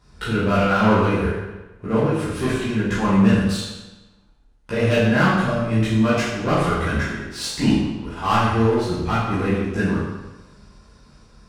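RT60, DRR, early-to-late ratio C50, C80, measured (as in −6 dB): 1.1 s, −11.5 dB, −0.5 dB, 3.0 dB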